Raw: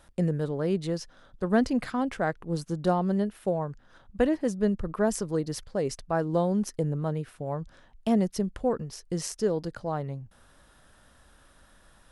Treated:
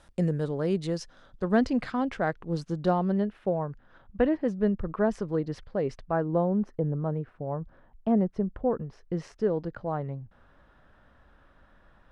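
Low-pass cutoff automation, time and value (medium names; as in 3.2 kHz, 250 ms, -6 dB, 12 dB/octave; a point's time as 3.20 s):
1.00 s 8.8 kHz
1.71 s 5 kHz
2.79 s 5 kHz
3.41 s 2.6 kHz
5.99 s 2.6 kHz
6.46 s 1.3 kHz
8.65 s 1.3 kHz
9.16 s 2.1 kHz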